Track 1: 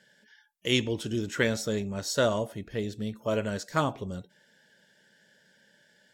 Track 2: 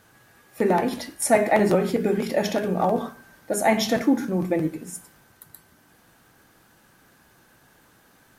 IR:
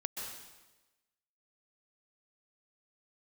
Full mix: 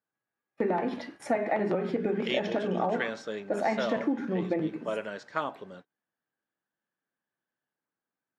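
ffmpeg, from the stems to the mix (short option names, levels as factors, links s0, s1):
-filter_complex "[0:a]highpass=f=610:p=1,adelay=1600,volume=1[s0];[1:a]volume=0.75[s1];[s0][s1]amix=inputs=2:normalize=0,agate=range=0.0282:threshold=0.00501:ratio=16:detection=peak,highpass=170,lowpass=2700,acompressor=threshold=0.0631:ratio=6"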